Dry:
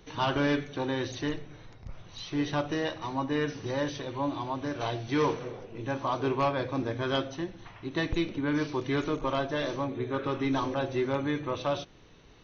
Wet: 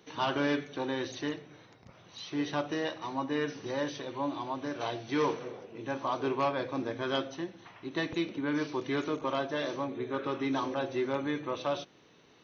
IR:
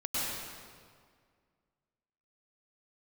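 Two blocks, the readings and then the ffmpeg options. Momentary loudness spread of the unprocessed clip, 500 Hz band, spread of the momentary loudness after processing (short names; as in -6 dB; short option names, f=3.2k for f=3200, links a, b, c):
10 LU, -2.0 dB, 8 LU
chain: -af "highpass=180,volume=-2dB"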